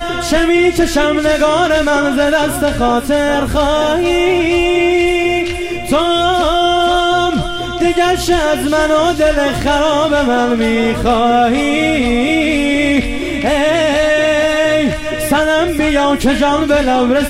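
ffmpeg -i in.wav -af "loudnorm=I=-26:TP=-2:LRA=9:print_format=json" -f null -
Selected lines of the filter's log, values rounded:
"input_i" : "-13.0",
"input_tp" : "-2.4",
"input_lra" : "0.7",
"input_thresh" : "-23.0",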